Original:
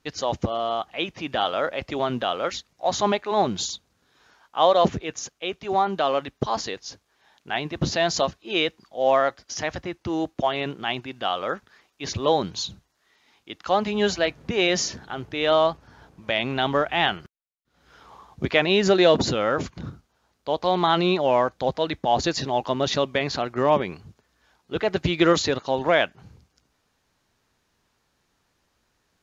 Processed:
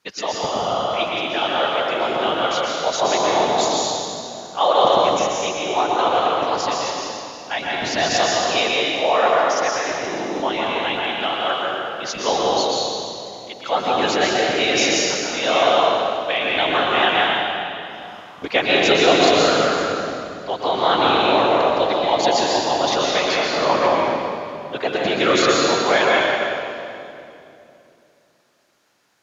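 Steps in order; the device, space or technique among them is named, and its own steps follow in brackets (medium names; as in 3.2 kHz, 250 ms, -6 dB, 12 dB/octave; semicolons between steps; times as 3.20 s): whispering ghost (whisper effect; high-pass 580 Hz 6 dB/octave; reverberation RT60 2.8 s, pre-delay 113 ms, DRR -4 dB); trim +2.5 dB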